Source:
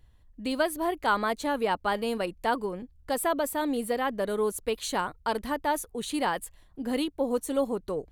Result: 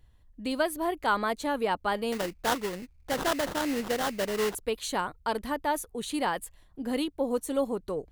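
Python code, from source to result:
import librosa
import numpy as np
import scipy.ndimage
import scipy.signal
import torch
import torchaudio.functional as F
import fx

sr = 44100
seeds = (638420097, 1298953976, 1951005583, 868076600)

y = fx.sample_hold(x, sr, seeds[0], rate_hz=2400.0, jitter_pct=20, at=(2.12, 4.55))
y = F.gain(torch.from_numpy(y), -1.0).numpy()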